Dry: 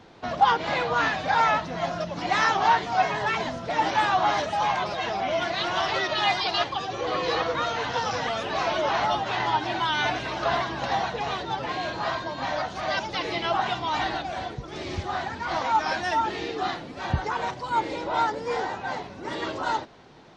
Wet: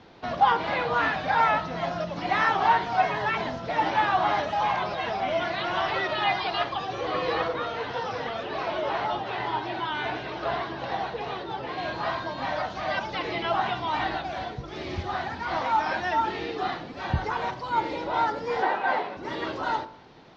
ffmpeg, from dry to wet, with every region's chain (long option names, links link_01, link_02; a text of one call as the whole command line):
ffmpeg -i in.wav -filter_complex "[0:a]asettb=1/sr,asplit=3[link_01][link_02][link_03];[link_01]atrim=end=7.484[link_04];[link_02]atrim=start=7.48:end=11.78,asetpts=PTS-STARTPTS,afade=type=in:duration=0.004:curve=qsin,afade=type=out:start_time=4.296:duration=0.004:curve=qsin,lowpass=5600,equalizer=frequency=410:width=2:gain=6,flanger=delay=5.2:depth=9.8:regen=-62:speed=1.8:shape=triangular[link_05];[link_03]atrim=start=11.776[link_06];[link_04][link_05]acrossfade=duration=0.004:curve1=hsin:curve2=qsin[link_07];[link_07][link_06]acrossfade=duration=0.004:curve1=qsin:curve2=hsin,asettb=1/sr,asplit=3[link_08][link_09][link_10];[link_08]atrim=end=18.624[link_11];[link_09]atrim=start=18.62:end=19.17,asetpts=PTS-STARTPTS,afade=type=in:duration=0.004:curve=qsin,afade=type=out:start_time=0.546:duration=0.004:curve=qsin,acontrast=90,highpass=350,lowpass=3000[link_12];[link_10]atrim=start=19.166[link_13];[link_11][link_12]acrossfade=duration=0.004:curve1=hsin:curve2=qsin[link_14];[link_14][link_13]acrossfade=duration=0.004:curve1=qsin:curve2=hsin,acrossover=split=3100[link_15][link_16];[link_16]acompressor=threshold=-44dB:ratio=4:attack=1:release=60[link_17];[link_15][link_17]amix=inputs=2:normalize=0,lowpass=frequency=5700:width=0.5412,lowpass=frequency=5700:width=1.3066,bandreject=frequency=49.25:width_type=h:width=4,bandreject=frequency=98.5:width_type=h:width=4,bandreject=frequency=147.75:width_type=h:width=4,bandreject=frequency=197:width_type=h:width=4,bandreject=frequency=246.25:width_type=h:width=4,bandreject=frequency=295.5:width_type=h:width=4,bandreject=frequency=344.75:width_type=h:width=4,bandreject=frequency=394:width_type=h:width=4,bandreject=frequency=443.25:width_type=h:width=4,bandreject=frequency=492.5:width_type=h:width=4,bandreject=frequency=541.75:width_type=h:width=4,bandreject=frequency=591:width_type=h:width=4,bandreject=frequency=640.25:width_type=h:width=4,bandreject=frequency=689.5:width_type=h:width=4,bandreject=frequency=738.75:width_type=h:width=4,bandreject=frequency=788:width_type=h:width=4,bandreject=frequency=837.25:width_type=h:width=4,bandreject=frequency=886.5:width_type=h:width=4,bandreject=frequency=935.75:width_type=h:width=4,bandreject=frequency=985:width_type=h:width=4,bandreject=frequency=1034.25:width_type=h:width=4,bandreject=frequency=1083.5:width_type=h:width=4,bandreject=frequency=1132.75:width_type=h:width=4,bandreject=frequency=1182:width_type=h:width=4,bandreject=frequency=1231.25:width_type=h:width=4,bandreject=frequency=1280.5:width_type=h:width=4,bandreject=frequency=1329.75:width_type=h:width=4,bandreject=frequency=1379:width_type=h:width=4,bandreject=frequency=1428.25:width_type=h:width=4,bandreject=frequency=1477.5:width_type=h:width=4,bandreject=frequency=1526.75:width_type=h:width=4,bandreject=frequency=1576:width_type=h:width=4,bandreject=frequency=1625.25:width_type=h:width=4,bandreject=frequency=1674.5:width_type=h:width=4,bandreject=frequency=1723.75:width_type=h:width=4" out.wav